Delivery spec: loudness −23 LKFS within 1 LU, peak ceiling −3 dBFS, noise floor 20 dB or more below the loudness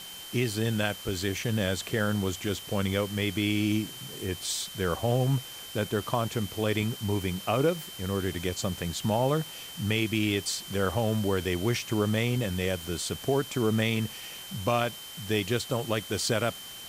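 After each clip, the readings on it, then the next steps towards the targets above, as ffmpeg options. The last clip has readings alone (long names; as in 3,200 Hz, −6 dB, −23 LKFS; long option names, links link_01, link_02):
interfering tone 3,100 Hz; level of the tone −43 dBFS; background noise floor −43 dBFS; target noise floor −49 dBFS; integrated loudness −29.0 LKFS; sample peak −11.0 dBFS; target loudness −23.0 LKFS
→ -af "bandreject=frequency=3100:width=30"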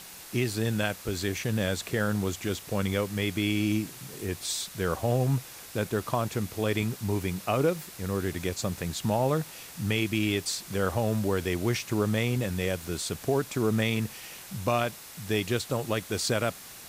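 interfering tone none found; background noise floor −46 dBFS; target noise floor −50 dBFS
→ -af "afftdn=noise_reduction=6:noise_floor=-46"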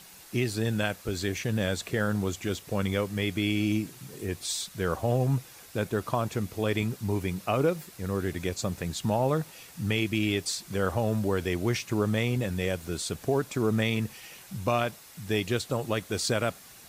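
background noise floor −50 dBFS; integrated loudness −29.5 LKFS; sample peak −11.5 dBFS; target loudness −23.0 LKFS
→ -af "volume=6.5dB"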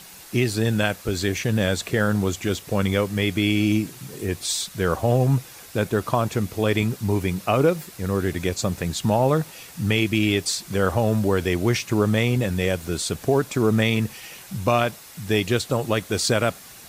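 integrated loudness −23.0 LKFS; sample peak −5.0 dBFS; background noise floor −44 dBFS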